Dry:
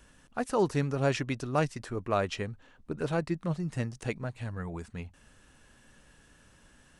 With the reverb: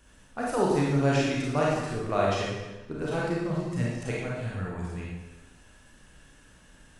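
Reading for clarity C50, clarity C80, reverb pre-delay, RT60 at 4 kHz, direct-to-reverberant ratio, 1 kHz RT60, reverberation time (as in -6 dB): -2.0 dB, 1.5 dB, 27 ms, 1.0 s, -5.0 dB, 1.1 s, 1.1 s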